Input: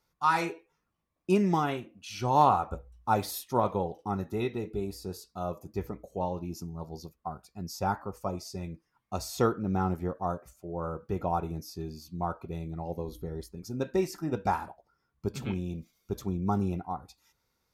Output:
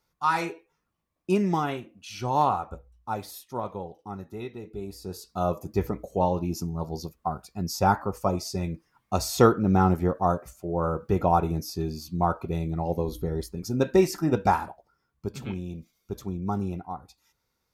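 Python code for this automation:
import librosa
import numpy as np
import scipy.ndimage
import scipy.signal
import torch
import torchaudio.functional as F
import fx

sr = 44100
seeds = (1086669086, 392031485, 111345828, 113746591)

y = fx.gain(x, sr, db=fx.line((2.09, 1.0), (3.2, -5.5), (4.61, -5.5), (5.1, 1.5), (5.38, 8.0), (14.28, 8.0), (15.29, -0.5)))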